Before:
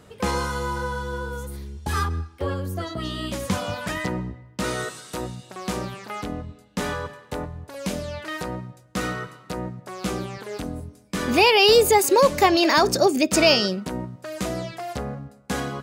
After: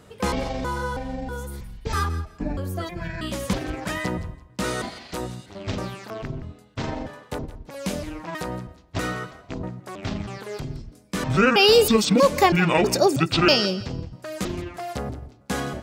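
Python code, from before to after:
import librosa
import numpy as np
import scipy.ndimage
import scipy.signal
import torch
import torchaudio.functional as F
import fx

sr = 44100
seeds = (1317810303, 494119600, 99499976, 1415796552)

y = fx.pitch_trill(x, sr, semitones=-11.0, every_ms=321)
y = fx.echo_thinned(y, sr, ms=168, feedback_pct=23, hz=420.0, wet_db=-15.5)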